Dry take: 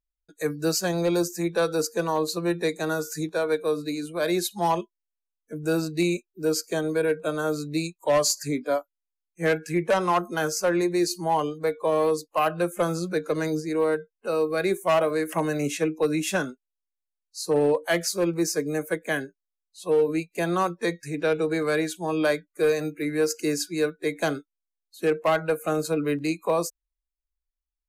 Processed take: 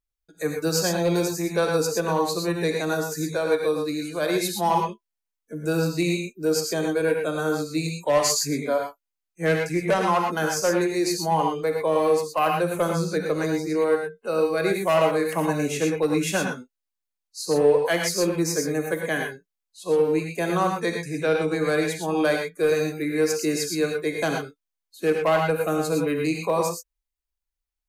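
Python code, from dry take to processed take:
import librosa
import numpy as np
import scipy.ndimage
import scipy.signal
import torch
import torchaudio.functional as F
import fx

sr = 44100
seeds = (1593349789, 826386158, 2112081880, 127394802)

y = fx.rev_gated(x, sr, seeds[0], gate_ms=140, shape='rising', drr_db=1.5)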